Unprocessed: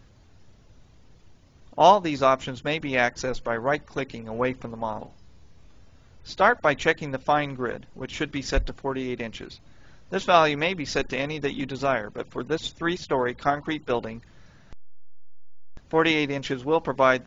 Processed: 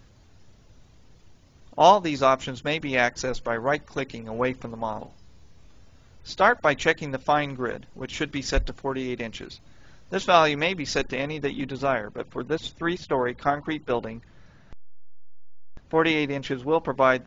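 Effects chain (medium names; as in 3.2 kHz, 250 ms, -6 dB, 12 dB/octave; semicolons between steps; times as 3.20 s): treble shelf 4.9 kHz +4 dB, from 11.04 s -7.5 dB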